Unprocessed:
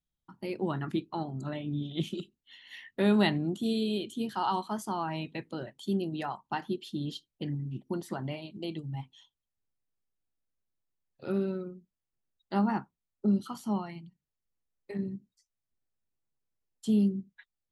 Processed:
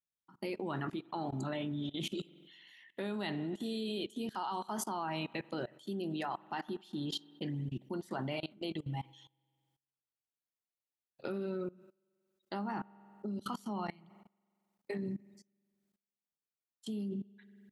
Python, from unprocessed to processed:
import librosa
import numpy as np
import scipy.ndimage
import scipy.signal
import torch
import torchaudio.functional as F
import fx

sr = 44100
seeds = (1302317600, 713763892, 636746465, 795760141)

y = fx.highpass(x, sr, hz=270.0, slope=6)
y = fx.rev_spring(y, sr, rt60_s=1.5, pass_ms=(45,), chirp_ms=60, drr_db=18.5)
y = fx.level_steps(y, sr, step_db=22)
y = y * librosa.db_to_amplitude(7.0)